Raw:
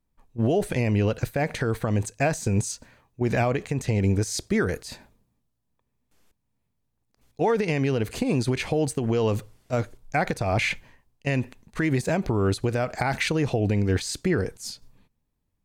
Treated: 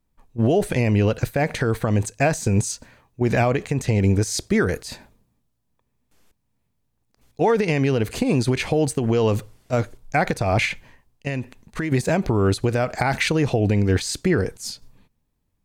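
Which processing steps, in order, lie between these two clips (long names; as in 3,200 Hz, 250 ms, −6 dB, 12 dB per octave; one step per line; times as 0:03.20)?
0:10.65–0:11.92: downward compressor 2 to 1, threshold −31 dBFS, peak gain reduction 6.5 dB
level +4 dB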